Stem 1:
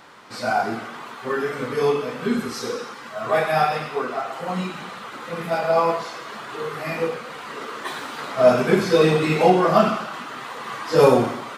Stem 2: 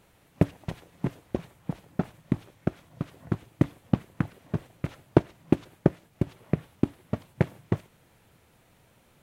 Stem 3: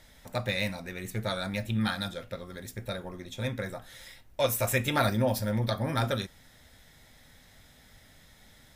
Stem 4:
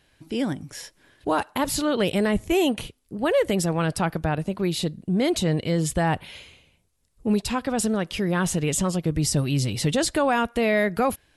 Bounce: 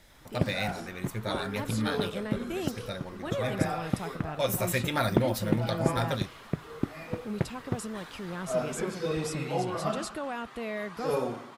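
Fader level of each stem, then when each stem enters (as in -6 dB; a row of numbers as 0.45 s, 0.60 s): -15.5 dB, -6.0 dB, -2.0 dB, -14.0 dB; 0.10 s, 0.00 s, 0.00 s, 0.00 s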